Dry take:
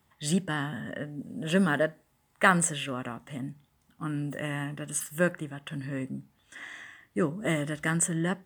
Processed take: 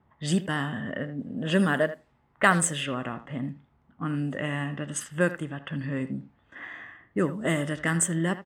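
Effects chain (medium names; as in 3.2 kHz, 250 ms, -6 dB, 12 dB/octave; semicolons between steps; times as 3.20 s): level-controlled noise filter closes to 1.3 kHz, open at -24.5 dBFS; in parallel at -2.5 dB: compression, threshold -34 dBFS, peak gain reduction 18 dB; on the sum: speakerphone echo 80 ms, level -13 dB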